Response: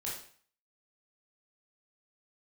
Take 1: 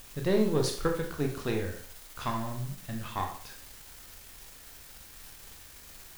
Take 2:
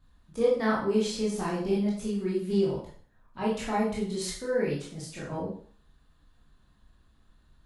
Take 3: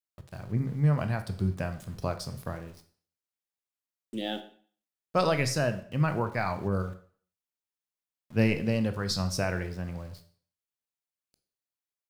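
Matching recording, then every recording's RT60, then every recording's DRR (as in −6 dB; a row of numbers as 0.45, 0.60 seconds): 2; 0.50, 0.50, 0.50 seconds; 2.0, −6.0, 8.5 decibels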